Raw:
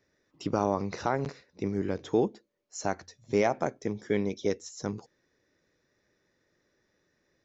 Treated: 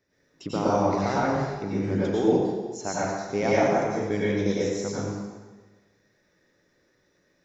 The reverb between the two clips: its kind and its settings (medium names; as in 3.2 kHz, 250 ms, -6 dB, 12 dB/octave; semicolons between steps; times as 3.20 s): plate-style reverb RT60 1.3 s, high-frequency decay 0.85×, pre-delay 80 ms, DRR -8 dB; trim -2.5 dB